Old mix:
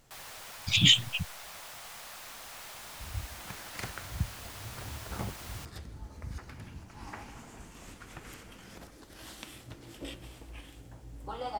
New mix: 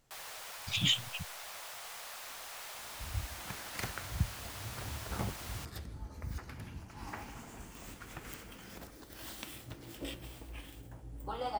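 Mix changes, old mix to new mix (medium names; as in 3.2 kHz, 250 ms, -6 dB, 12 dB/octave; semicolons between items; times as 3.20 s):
speech -8.5 dB; second sound: remove low-pass 11 kHz 12 dB/octave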